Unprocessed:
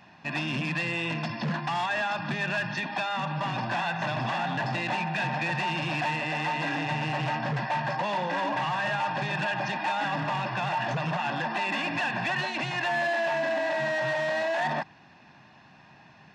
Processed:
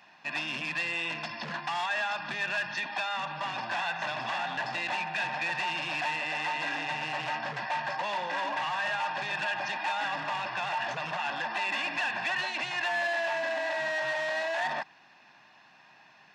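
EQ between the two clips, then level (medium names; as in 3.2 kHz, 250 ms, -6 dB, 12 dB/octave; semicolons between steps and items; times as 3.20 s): high-pass 910 Hz 6 dB/octave; 0.0 dB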